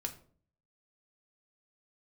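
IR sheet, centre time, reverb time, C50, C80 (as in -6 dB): 9 ms, 0.50 s, 13.0 dB, 17.0 dB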